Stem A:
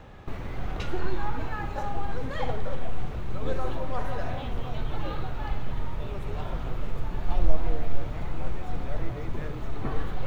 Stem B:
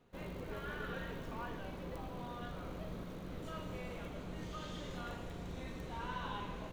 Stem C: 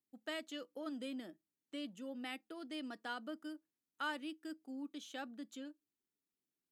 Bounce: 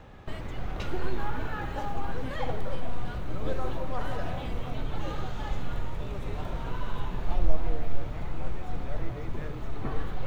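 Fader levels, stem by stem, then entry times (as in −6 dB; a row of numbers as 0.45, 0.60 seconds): −2.0, 0.0, −5.5 decibels; 0.00, 0.65, 0.00 seconds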